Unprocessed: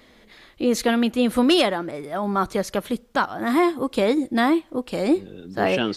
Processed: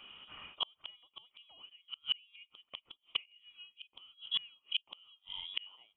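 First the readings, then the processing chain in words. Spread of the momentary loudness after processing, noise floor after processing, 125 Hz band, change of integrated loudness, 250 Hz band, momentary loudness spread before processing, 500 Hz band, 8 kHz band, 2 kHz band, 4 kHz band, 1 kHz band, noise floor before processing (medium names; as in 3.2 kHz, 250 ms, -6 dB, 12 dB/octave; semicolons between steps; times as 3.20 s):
18 LU, -82 dBFS, under -35 dB, -17.5 dB, under -40 dB, 9 LU, under -40 dB, under -40 dB, -21.5 dB, -6.5 dB, -30.5 dB, -54 dBFS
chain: in parallel at -3 dB: gain riding within 4 dB 0.5 s; on the sum: vowel filter a; frequency inversion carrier 3.6 kHz; inverted gate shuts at -28 dBFS, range -40 dB; trim +9 dB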